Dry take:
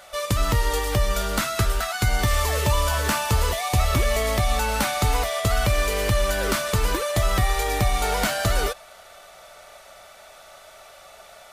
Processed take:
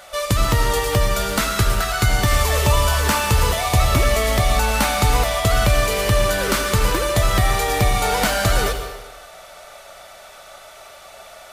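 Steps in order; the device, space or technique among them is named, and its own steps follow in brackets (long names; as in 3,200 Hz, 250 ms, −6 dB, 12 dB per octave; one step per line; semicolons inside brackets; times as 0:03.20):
saturated reverb return (on a send at −5 dB: convolution reverb RT60 1.1 s, pre-delay 71 ms + soft clipping −17.5 dBFS, distortion −15 dB)
on the sum: level +4 dB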